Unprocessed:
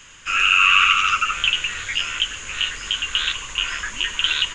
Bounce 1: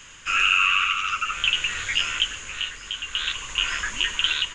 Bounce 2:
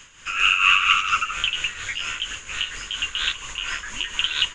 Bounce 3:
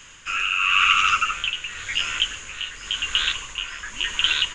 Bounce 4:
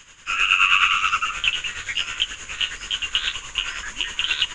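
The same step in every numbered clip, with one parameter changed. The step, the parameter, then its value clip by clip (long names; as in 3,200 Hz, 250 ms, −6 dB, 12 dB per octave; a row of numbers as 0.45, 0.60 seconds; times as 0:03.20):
amplitude tremolo, speed: 0.52, 4.3, 0.94, 9.5 Hertz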